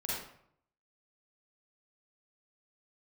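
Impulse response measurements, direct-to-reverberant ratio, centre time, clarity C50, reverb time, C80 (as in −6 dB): −7.0 dB, 72 ms, −3.0 dB, 0.65 s, 2.5 dB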